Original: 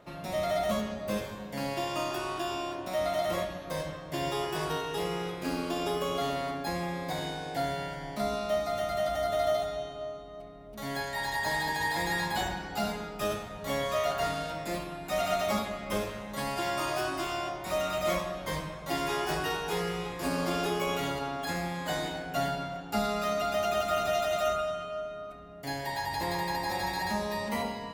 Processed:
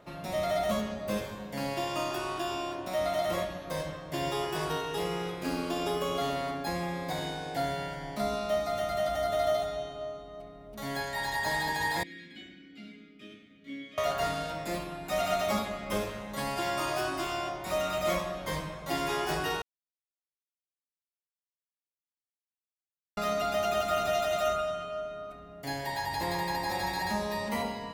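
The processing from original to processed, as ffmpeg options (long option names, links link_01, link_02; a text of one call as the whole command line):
ffmpeg -i in.wav -filter_complex "[0:a]asettb=1/sr,asplit=3[link_01][link_02][link_03];[link_01]atrim=end=12.034[link_04];[link_02]atrim=start=12.03:end=13.98,asetpts=PTS-STARTPTS,afade=type=in:duration=0.004:curve=qsin,afade=type=out:start_time=1.946:duration=0.004:curve=qsin,asplit=3[link_05][link_06][link_07];[link_05]bandpass=frequency=270:width_type=q:width=8,volume=0dB[link_08];[link_06]bandpass=frequency=2290:width_type=q:width=8,volume=-6dB[link_09];[link_07]bandpass=frequency=3010:width_type=q:width=8,volume=-9dB[link_10];[link_08][link_09][link_10]amix=inputs=3:normalize=0[link_11];[link_03]atrim=start=13.976[link_12];[link_04][link_11]acrossfade=duration=0.004:curve1=hsin:curve2=qsin[link_13];[link_13][link_12]acrossfade=duration=0.004:curve1=qsin:curve2=hsin,asplit=3[link_14][link_15][link_16];[link_14]atrim=end=19.62,asetpts=PTS-STARTPTS,afade=type=out:start_time=19.616:duration=0.004:curve=hsin[link_17];[link_15]atrim=start=19.62:end=23.17,asetpts=PTS-STARTPTS,volume=0[link_18];[link_16]atrim=start=23.17,asetpts=PTS-STARTPTS,afade=type=in:duration=0.004:curve=hsin[link_19];[link_17][link_18][link_19]concat=n=3:v=0:a=1" out.wav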